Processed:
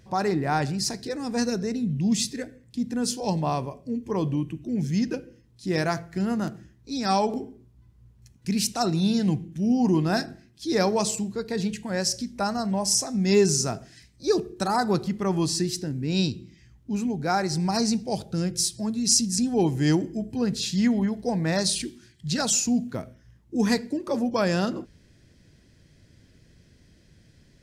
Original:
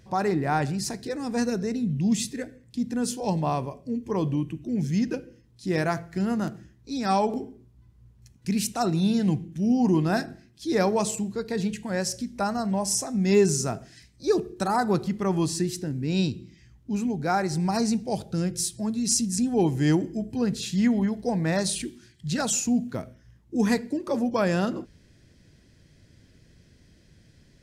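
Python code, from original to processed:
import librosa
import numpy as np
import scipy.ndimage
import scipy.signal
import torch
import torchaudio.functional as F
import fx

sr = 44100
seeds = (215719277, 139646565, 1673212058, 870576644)

y = fx.dynamic_eq(x, sr, hz=4900.0, q=1.6, threshold_db=-47.0, ratio=4.0, max_db=7)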